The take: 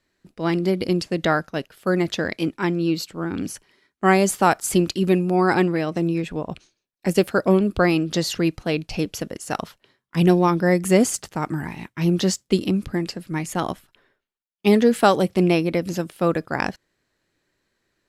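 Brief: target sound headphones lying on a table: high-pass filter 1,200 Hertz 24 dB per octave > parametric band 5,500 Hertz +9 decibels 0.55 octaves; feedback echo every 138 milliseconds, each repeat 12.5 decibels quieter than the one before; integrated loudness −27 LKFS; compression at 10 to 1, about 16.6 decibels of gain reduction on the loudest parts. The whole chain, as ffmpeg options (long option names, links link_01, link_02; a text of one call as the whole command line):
ffmpeg -i in.wav -af "acompressor=threshold=-28dB:ratio=10,highpass=frequency=1200:width=0.5412,highpass=frequency=1200:width=1.3066,equalizer=frequency=5500:width_type=o:width=0.55:gain=9,aecho=1:1:138|276|414:0.237|0.0569|0.0137,volume=11dB" out.wav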